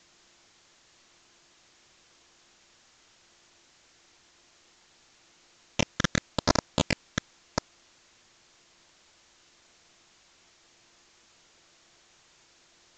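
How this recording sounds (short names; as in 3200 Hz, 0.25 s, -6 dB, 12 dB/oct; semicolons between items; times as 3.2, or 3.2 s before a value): a buzz of ramps at a fixed pitch in blocks of 128 samples; phasing stages 12, 0.95 Hz, lowest notch 800–3000 Hz; a quantiser's noise floor 10-bit, dither triangular; µ-law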